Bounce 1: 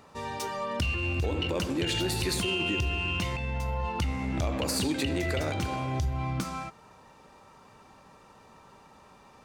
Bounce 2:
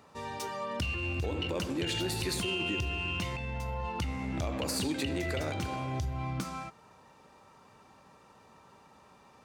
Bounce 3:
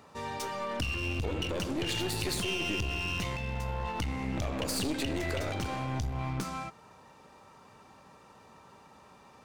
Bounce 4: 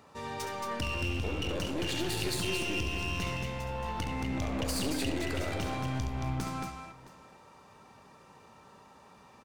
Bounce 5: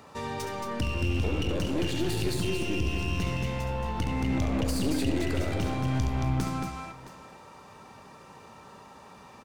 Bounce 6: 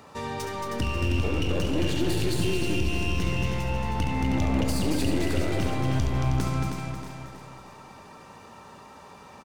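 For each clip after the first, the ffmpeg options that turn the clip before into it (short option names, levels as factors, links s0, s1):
-af "highpass=59,volume=0.668"
-af "aeval=exprs='clip(val(0),-1,0.0141)':c=same,volume=1.33"
-af "aecho=1:1:69|225|666:0.398|0.562|0.112,volume=0.794"
-filter_complex "[0:a]acrossover=split=440[s0][s1];[s1]acompressor=threshold=0.00891:ratio=6[s2];[s0][s2]amix=inputs=2:normalize=0,volume=2.11"
-af "aecho=1:1:316|632|948|1264|1580:0.447|0.197|0.0865|0.0381|0.0167,volume=1.19"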